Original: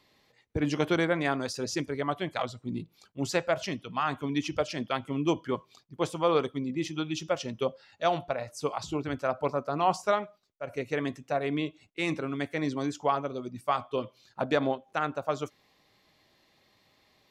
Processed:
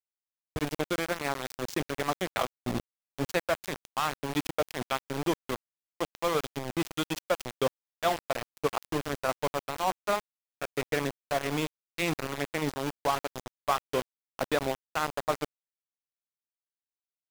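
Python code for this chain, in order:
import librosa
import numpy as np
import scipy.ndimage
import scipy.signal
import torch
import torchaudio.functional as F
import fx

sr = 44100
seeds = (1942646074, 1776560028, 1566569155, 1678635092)

y = fx.rider(x, sr, range_db=4, speed_s=0.5)
y = np.where(np.abs(y) >= 10.0 ** (-27.5 / 20.0), y, 0.0)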